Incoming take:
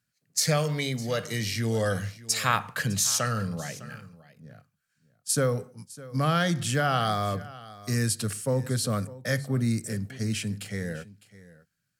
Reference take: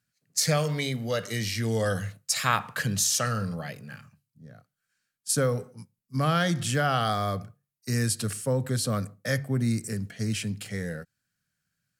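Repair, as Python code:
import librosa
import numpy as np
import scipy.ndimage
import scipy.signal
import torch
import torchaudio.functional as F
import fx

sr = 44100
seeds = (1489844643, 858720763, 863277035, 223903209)

y = fx.fix_echo_inverse(x, sr, delay_ms=606, level_db=-18.5)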